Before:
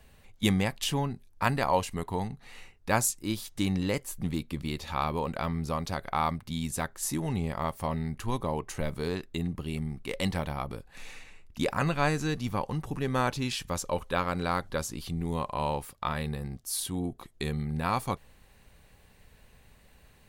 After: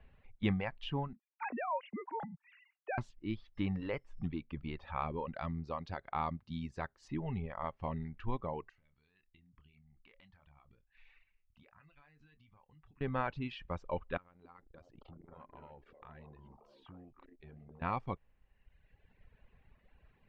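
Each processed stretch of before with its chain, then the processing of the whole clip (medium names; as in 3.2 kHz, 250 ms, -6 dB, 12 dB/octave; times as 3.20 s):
1.13–2.98 s: formants replaced by sine waves + compression 2.5:1, threshold -28 dBFS
3.54–4.26 s: whistle 5.3 kHz -56 dBFS + tape noise reduction on one side only encoder only
5.34–7.08 s: high-pass 43 Hz + resonant high shelf 3.7 kHz +7.5 dB, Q 1.5
8.69–13.01 s: compression 16:1, threshold -36 dBFS + amplifier tone stack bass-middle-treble 5-5-5 + doubling 27 ms -9 dB
14.17–17.82 s: compression 5:1, threshold -42 dBFS + repeats whose band climbs or falls 278 ms, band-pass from 350 Hz, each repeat 0.7 oct, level -1 dB + transformer saturation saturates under 550 Hz
whole clip: low-pass 2.8 kHz 24 dB/octave; reverb removal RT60 1.4 s; bass shelf 66 Hz +6 dB; trim -6.5 dB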